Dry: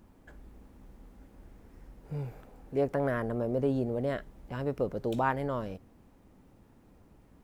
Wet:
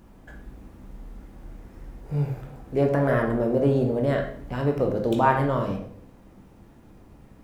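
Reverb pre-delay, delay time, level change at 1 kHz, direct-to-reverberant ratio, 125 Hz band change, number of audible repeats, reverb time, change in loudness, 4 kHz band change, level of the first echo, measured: 14 ms, no echo audible, +9.0 dB, 1.5 dB, +10.0 dB, no echo audible, 0.65 s, +8.0 dB, +8.0 dB, no echo audible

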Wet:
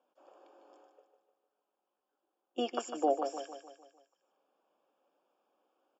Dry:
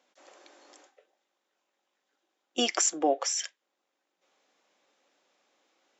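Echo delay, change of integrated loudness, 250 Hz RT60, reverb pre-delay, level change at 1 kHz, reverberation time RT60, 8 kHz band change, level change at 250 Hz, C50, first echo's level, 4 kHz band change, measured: 151 ms, −7.5 dB, no reverb audible, no reverb audible, −2.5 dB, no reverb audible, can't be measured, −4.5 dB, no reverb audible, −8.0 dB, −14.5 dB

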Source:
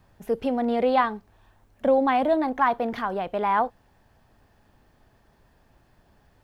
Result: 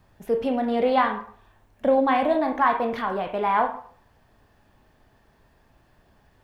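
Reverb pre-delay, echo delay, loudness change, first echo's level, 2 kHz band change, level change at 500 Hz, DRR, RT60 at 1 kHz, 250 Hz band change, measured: 21 ms, no echo audible, +1.0 dB, no echo audible, +2.0 dB, +1.0 dB, 3.0 dB, 0.50 s, +0.5 dB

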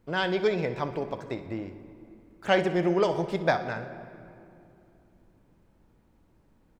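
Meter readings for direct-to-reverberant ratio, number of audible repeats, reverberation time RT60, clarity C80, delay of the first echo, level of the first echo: 9.5 dB, 2, 2.7 s, 12.5 dB, 62 ms, −15.0 dB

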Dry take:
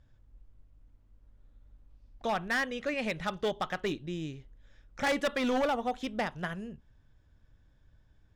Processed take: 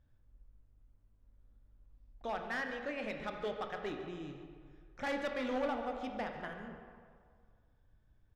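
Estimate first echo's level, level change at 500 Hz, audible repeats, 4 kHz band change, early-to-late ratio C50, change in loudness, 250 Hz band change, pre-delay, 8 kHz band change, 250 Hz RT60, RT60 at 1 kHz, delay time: −15.0 dB, −6.0 dB, 1, −10.0 dB, 5.0 dB, −7.0 dB, −7.0 dB, 20 ms, −14.0 dB, 1.9 s, 2.0 s, 142 ms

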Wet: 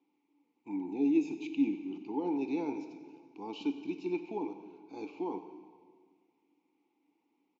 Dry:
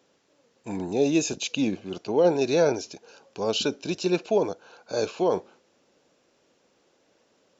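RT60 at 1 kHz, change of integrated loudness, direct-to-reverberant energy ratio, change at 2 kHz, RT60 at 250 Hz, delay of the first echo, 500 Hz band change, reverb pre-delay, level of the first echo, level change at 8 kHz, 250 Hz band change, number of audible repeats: 1.7 s, −9.0 dB, 7.5 dB, −14.0 dB, 1.9 s, 94 ms, −16.0 dB, 3 ms, −16.5 dB, can't be measured, −4.0 dB, 1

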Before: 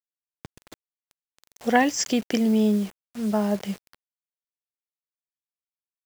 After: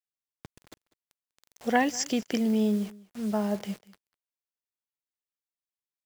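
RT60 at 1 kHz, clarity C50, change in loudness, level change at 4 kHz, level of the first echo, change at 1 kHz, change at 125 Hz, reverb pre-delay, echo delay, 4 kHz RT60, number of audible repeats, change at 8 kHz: no reverb audible, no reverb audible, −4.5 dB, −4.5 dB, −21.5 dB, −4.5 dB, can't be measured, no reverb audible, 196 ms, no reverb audible, 1, −4.5 dB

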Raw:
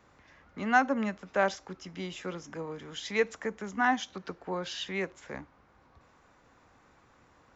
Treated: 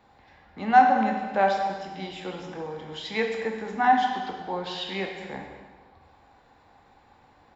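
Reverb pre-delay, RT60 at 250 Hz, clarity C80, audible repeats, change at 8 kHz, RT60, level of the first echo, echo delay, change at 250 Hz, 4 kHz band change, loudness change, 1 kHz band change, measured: 6 ms, 1.3 s, 5.5 dB, 1, can't be measured, 1.4 s, −16.0 dB, 217 ms, +3.5 dB, +4.0 dB, +6.5 dB, +10.5 dB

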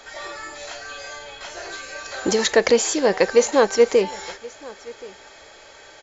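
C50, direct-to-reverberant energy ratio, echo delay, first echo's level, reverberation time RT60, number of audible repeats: no reverb audible, no reverb audible, 1,076 ms, −21.5 dB, no reverb audible, 1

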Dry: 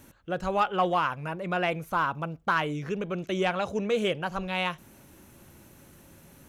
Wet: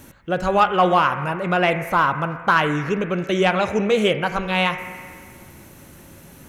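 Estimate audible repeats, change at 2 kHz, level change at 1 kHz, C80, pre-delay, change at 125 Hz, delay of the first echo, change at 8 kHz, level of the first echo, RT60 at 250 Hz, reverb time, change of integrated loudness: no echo audible, +9.5 dB, +9.0 dB, 9.0 dB, 16 ms, +9.0 dB, no echo audible, +8.5 dB, no echo audible, 1.9 s, 1.9 s, +9.0 dB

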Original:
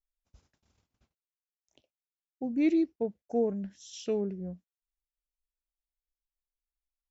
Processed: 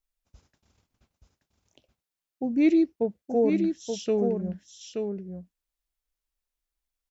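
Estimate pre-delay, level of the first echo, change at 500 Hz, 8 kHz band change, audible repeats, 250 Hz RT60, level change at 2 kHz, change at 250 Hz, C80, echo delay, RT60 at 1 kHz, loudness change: no reverb audible, −5.5 dB, +6.0 dB, can't be measured, 1, no reverb audible, +6.0 dB, +6.0 dB, no reverb audible, 877 ms, no reverb audible, +5.0 dB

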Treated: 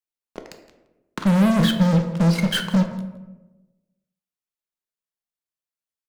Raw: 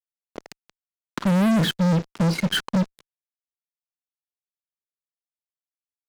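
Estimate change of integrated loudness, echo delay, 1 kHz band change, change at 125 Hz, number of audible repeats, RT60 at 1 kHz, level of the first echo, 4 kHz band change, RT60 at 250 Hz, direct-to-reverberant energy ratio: +2.5 dB, 165 ms, +1.5 dB, +3.0 dB, 1, 0.95 s, −18.0 dB, +0.5 dB, 1.4 s, 5.0 dB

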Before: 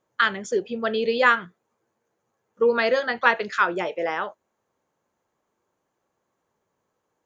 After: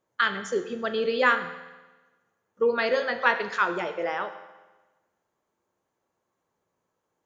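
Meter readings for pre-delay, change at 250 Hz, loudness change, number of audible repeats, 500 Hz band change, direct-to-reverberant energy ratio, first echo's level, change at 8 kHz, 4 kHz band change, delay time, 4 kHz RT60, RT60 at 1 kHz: 11 ms, −3.5 dB, −3.0 dB, no echo audible, −3.0 dB, 8.5 dB, no echo audible, can't be measured, −2.5 dB, no echo audible, 1.1 s, 1.2 s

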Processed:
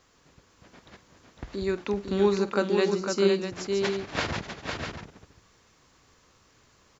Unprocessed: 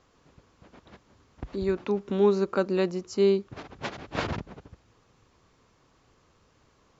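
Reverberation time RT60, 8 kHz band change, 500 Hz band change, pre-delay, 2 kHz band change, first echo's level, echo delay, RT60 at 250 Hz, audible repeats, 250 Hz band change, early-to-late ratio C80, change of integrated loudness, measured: no reverb audible, can't be measured, 0.0 dB, no reverb audible, +5.0 dB, −15.0 dB, 50 ms, no reverb audible, 3, +0.5 dB, no reverb audible, 0.0 dB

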